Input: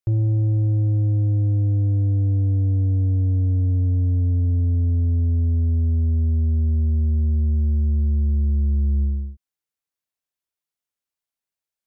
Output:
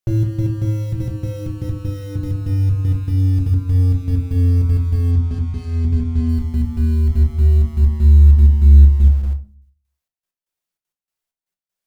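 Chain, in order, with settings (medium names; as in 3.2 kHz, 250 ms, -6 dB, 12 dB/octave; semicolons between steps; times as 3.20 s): trance gate "xxx..x..xxxx.x.." 195 bpm -12 dB; in parallel at -10 dB: bit crusher 6-bit; on the sum: hum notches 50/100/150/200/250/300 Hz; simulated room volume 190 m³, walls furnished, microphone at 1 m; 5.11–6.29 s: decimation joined by straight lines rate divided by 3×; trim +3 dB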